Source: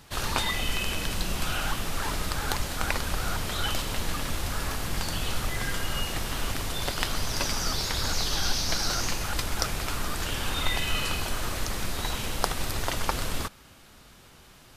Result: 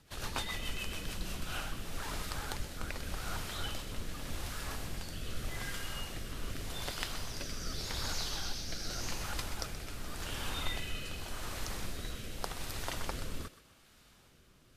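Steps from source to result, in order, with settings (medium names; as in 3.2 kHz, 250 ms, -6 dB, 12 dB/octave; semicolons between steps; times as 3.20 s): rotary cabinet horn 7 Hz, later 0.85 Hz, at 0.94 s; thinning echo 126 ms, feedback 46%, level -13 dB; trim -8 dB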